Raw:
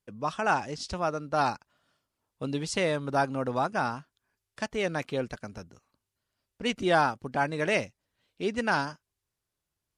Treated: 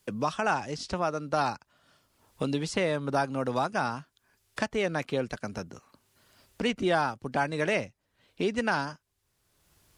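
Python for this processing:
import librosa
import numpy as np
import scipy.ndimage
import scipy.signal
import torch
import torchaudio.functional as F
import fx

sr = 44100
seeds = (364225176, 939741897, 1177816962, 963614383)

y = fx.band_squash(x, sr, depth_pct=70)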